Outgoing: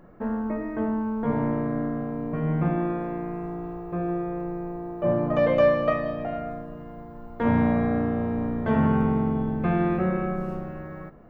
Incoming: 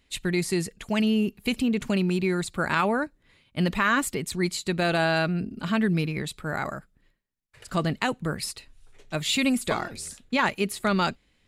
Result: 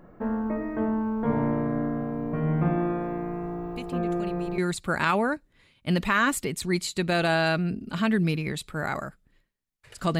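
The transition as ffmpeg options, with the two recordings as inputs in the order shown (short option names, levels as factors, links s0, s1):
-filter_complex "[1:a]asplit=2[s0][s1];[0:a]apad=whole_dur=10.19,atrim=end=10.19,atrim=end=4.582[s2];[s1]atrim=start=2.278:end=7.89[s3];[s0]atrim=start=1.46:end=2.28,asetpts=PTS-STARTPTS,volume=0.211,afade=t=in:d=0.004:c=hsin,afade=t=out:st=0.816:d=0.004:c=hsin,adelay=3760[s4];[s2][s3]acrossfade=d=0.004:c1=hsin:c2=hsin[s5];[s5][s4]amix=inputs=2:normalize=0"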